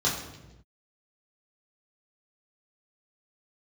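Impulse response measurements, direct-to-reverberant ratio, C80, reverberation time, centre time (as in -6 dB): -5.5 dB, 7.5 dB, no single decay rate, 40 ms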